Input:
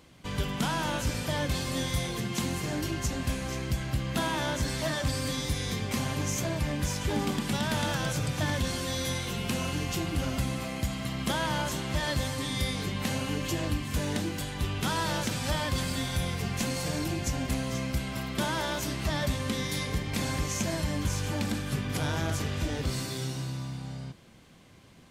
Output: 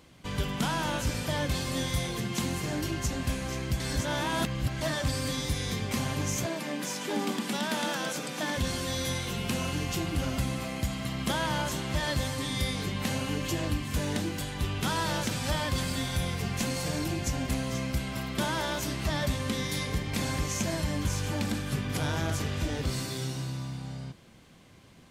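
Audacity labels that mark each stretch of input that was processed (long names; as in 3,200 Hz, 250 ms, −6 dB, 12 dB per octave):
3.800000	4.810000	reverse
6.460000	8.570000	Butterworth high-pass 190 Hz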